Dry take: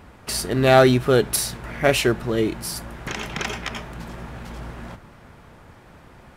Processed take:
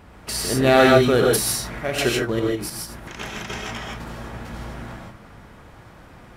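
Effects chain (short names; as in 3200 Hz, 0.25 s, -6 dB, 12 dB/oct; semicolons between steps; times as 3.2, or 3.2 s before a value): 1.68–3.69 chopper 3.3 Hz, depth 60%, duty 35%; non-linear reverb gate 0.18 s rising, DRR -1 dB; gain -1.5 dB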